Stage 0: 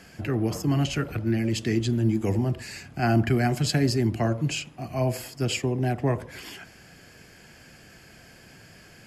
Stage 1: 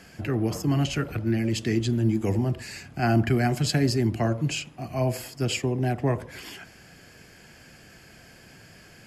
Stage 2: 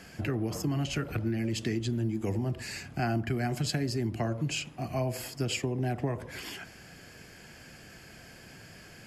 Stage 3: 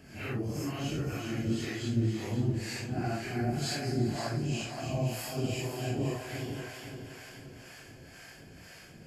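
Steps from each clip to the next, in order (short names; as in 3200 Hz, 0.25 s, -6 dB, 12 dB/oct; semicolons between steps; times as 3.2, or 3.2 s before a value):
nothing audible
compressor 6:1, threshold -27 dBFS, peak gain reduction 10.5 dB
phase scrambler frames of 0.2 s; multi-head echo 0.173 s, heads second and third, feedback 53%, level -9 dB; harmonic tremolo 2 Hz, depth 70%, crossover 570 Hz; gain +1 dB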